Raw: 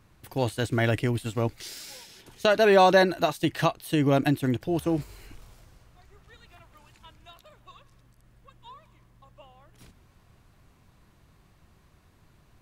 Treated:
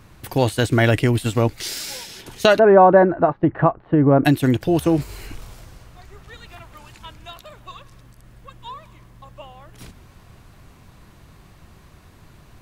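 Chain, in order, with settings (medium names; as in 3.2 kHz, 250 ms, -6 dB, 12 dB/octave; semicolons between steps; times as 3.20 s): 2.59–4.25 s: low-pass 1.4 kHz 24 dB/octave; in parallel at +0.5 dB: compression, threshold -31 dBFS, peak gain reduction 15.5 dB; on the sum: trim +5.5 dB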